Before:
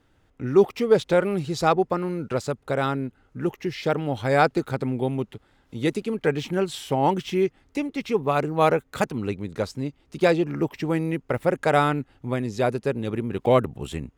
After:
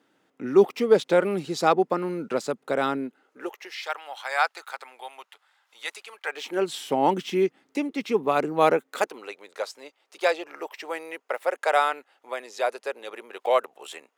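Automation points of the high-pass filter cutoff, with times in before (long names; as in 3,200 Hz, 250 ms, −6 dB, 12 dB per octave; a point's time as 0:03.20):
high-pass filter 24 dB per octave
0:02.97 200 Hz
0:03.85 830 Hz
0:06.24 830 Hz
0:06.70 200 Hz
0:08.71 200 Hz
0:09.28 540 Hz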